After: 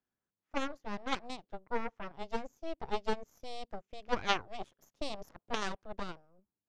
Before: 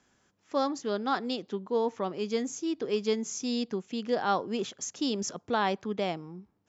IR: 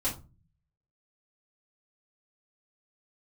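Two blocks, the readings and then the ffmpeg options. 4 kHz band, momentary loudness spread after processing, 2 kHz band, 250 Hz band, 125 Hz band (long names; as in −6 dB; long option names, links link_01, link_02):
−5.0 dB, 12 LU, −2.0 dB, −12.0 dB, −9.0 dB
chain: -af "aemphasis=mode=reproduction:type=75fm,aeval=exprs='0.211*(cos(1*acos(clip(val(0)/0.211,-1,1)))-cos(1*PI/2))+0.0668*(cos(3*acos(clip(val(0)/0.211,-1,1)))-cos(3*PI/2))+0.0376*(cos(4*acos(clip(val(0)/0.211,-1,1)))-cos(4*PI/2))':channel_layout=same,volume=2.5dB"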